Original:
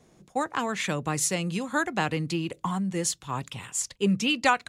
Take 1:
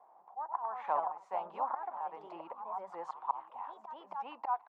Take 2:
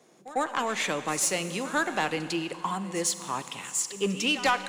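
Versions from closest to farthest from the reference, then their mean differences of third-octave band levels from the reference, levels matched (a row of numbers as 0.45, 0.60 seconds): 2, 1; 7.0, 15.5 decibels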